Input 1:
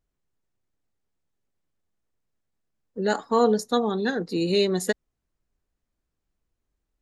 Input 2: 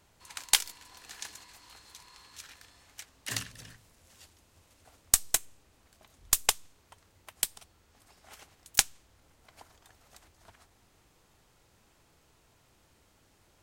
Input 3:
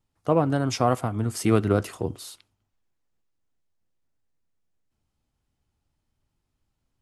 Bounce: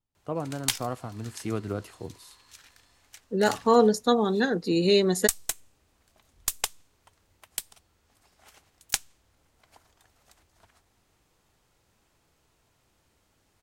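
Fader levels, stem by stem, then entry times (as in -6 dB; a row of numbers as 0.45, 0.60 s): +1.0, -3.5, -10.5 dB; 0.35, 0.15, 0.00 s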